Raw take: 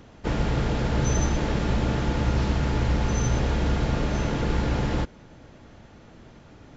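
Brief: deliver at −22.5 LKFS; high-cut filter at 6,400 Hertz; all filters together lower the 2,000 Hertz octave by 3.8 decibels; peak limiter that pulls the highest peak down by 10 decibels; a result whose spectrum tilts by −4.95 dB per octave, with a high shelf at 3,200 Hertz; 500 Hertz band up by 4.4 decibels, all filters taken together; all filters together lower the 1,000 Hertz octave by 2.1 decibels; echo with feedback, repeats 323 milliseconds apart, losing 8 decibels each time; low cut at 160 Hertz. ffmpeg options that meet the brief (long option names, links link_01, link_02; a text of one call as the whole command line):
ffmpeg -i in.wav -af "highpass=160,lowpass=6400,equalizer=frequency=500:width_type=o:gain=6.5,equalizer=frequency=1000:width_type=o:gain=-4.5,equalizer=frequency=2000:width_type=o:gain=-6.5,highshelf=frequency=3200:gain=8,alimiter=limit=-22dB:level=0:latency=1,aecho=1:1:323|646|969|1292|1615:0.398|0.159|0.0637|0.0255|0.0102,volume=8.5dB" out.wav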